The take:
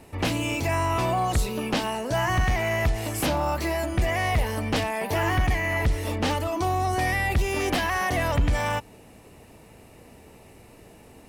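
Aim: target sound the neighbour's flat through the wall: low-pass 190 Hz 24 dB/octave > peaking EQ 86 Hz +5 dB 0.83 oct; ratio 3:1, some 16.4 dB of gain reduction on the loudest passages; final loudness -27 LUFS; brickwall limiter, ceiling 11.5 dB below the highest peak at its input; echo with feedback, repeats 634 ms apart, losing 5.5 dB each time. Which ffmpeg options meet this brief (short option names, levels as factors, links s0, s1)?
-af "acompressor=threshold=0.00794:ratio=3,alimiter=level_in=5.62:limit=0.0631:level=0:latency=1,volume=0.178,lowpass=f=190:w=0.5412,lowpass=f=190:w=1.3066,equalizer=f=86:t=o:w=0.83:g=5,aecho=1:1:634|1268|1902|2536|3170|3804|4438:0.531|0.281|0.149|0.079|0.0419|0.0222|0.0118,volume=12.6"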